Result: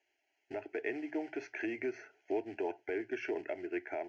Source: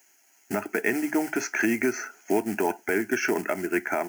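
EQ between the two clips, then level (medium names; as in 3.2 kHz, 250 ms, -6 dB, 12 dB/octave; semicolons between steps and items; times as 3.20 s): low-pass 3.6 kHz 24 dB/octave; hum notches 60/120 Hz; static phaser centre 490 Hz, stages 4; -8.5 dB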